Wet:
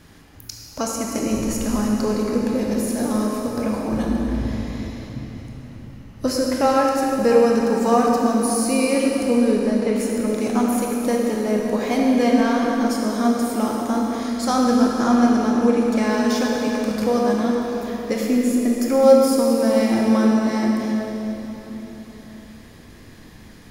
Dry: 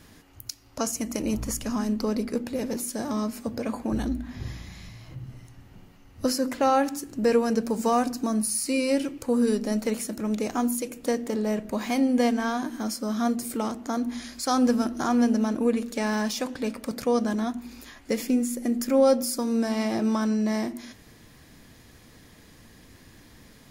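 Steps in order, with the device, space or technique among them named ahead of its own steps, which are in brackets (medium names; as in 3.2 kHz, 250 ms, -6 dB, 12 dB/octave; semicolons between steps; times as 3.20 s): 9.37–9.96 s: distance through air 130 m; swimming-pool hall (reverberation RT60 3.9 s, pre-delay 19 ms, DRR -2 dB; treble shelf 5.5 kHz -5 dB); trim +3 dB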